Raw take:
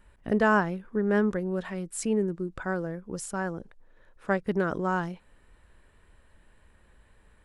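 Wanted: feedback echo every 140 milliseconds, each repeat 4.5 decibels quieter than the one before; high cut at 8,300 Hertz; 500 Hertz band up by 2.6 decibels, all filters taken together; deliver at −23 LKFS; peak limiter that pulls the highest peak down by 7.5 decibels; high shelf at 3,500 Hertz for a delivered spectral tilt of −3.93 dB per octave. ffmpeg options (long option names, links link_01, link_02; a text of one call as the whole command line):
ffmpeg -i in.wav -af "lowpass=8300,equalizer=frequency=500:width_type=o:gain=3.5,highshelf=frequency=3500:gain=-3.5,alimiter=limit=-18.5dB:level=0:latency=1,aecho=1:1:140|280|420|560|700|840|980|1120|1260:0.596|0.357|0.214|0.129|0.0772|0.0463|0.0278|0.0167|0.01,volume=5.5dB" out.wav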